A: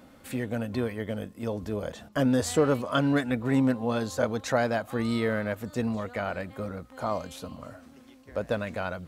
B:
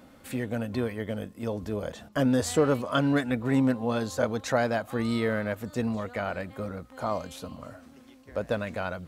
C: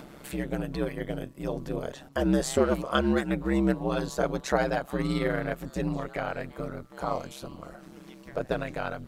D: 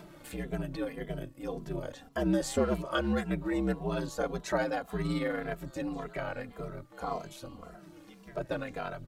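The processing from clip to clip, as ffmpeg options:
-af anull
-af "aeval=exprs='val(0)*sin(2*PI*67*n/s)':c=same,acompressor=mode=upward:threshold=0.00891:ratio=2.5,volume=1.33"
-filter_complex "[0:a]asplit=2[s0][s1];[s1]adelay=2.6,afreqshift=-1.8[s2];[s0][s2]amix=inputs=2:normalize=1,volume=0.841"

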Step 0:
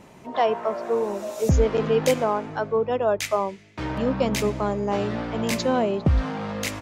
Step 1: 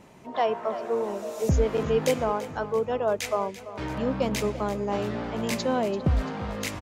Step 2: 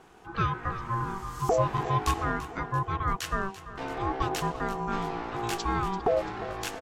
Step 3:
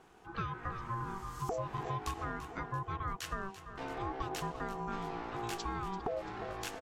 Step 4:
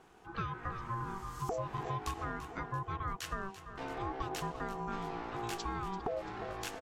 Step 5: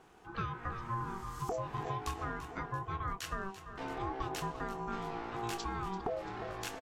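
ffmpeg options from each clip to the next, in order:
-af "aecho=1:1:339|678|1017|1356|1695|2034:0.188|0.105|0.0591|0.0331|0.0185|0.0104,volume=0.668"
-af "aeval=exprs='val(0)*sin(2*PI*580*n/s)':c=same"
-af "acompressor=threshold=0.0447:ratio=6,volume=0.501"
-af anull
-filter_complex "[0:a]asplit=2[s0][s1];[s1]adelay=26,volume=0.266[s2];[s0][s2]amix=inputs=2:normalize=0"

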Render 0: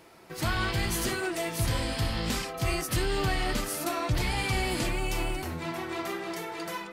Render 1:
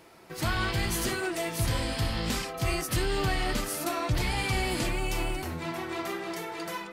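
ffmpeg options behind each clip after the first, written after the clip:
-af anull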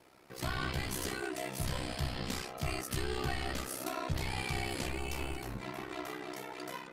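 -af "flanger=delay=8.6:depth=5.9:regen=74:speed=1.5:shape=triangular,aeval=exprs='val(0)*sin(2*PI*32*n/s)':c=same"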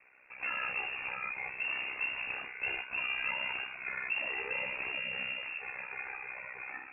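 -af "lowpass=f=2400:t=q:w=0.5098,lowpass=f=2400:t=q:w=0.6013,lowpass=f=2400:t=q:w=0.9,lowpass=f=2400:t=q:w=2.563,afreqshift=-2800"

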